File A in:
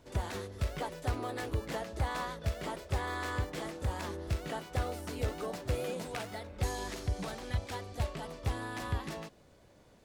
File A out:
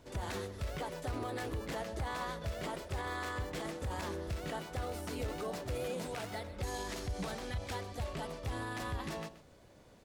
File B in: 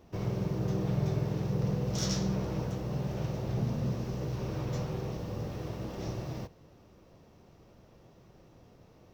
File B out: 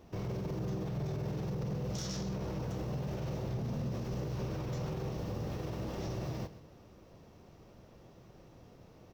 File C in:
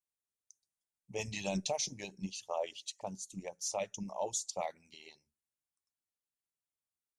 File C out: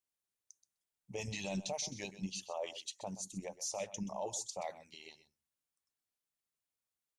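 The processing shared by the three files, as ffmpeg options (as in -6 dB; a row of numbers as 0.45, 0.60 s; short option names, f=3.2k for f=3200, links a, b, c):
-af "alimiter=level_in=7dB:limit=-24dB:level=0:latency=1:release=32,volume=-7dB,aecho=1:1:128:0.178,volume=1dB"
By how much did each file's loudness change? -2.5, -4.0, -2.5 LU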